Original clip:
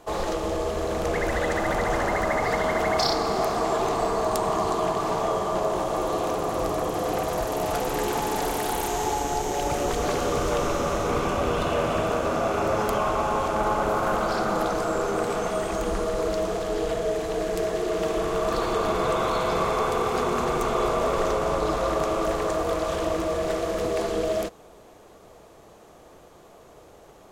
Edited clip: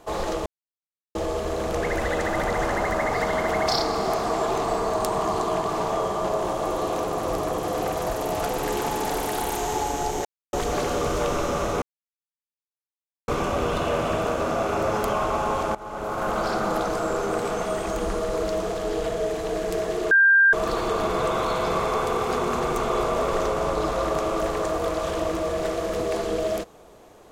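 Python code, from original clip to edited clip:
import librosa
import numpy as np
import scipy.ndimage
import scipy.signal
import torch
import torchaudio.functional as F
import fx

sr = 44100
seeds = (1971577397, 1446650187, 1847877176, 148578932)

y = fx.edit(x, sr, fx.insert_silence(at_s=0.46, length_s=0.69),
    fx.silence(start_s=9.56, length_s=0.28),
    fx.insert_silence(at_s=11.13, length_s=1.46),
    fx.fade_in_from(start_s=13.6, length_s=0.65, floor_db=-20.5),
    fx.bleep(start_s=17.96, length_s=0.42, hz=1590.0, db=-12.5), tone=tone)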